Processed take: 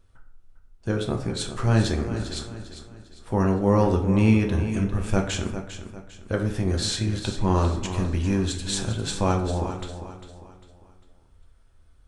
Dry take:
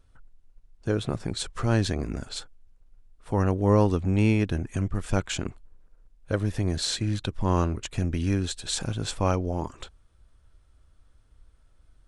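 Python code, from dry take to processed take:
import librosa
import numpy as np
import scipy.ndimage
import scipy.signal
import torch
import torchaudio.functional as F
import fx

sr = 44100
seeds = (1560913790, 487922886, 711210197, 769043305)

y = fx.echo_feedback(x, sr, ms=400, feedback_pct=38, wet_db=-11)
y = fx.rev_plate(y, sr, seeds[0], rt60_s=0.64, hf_ratio=0.6, predelay_ms=0, drr_db=2.5)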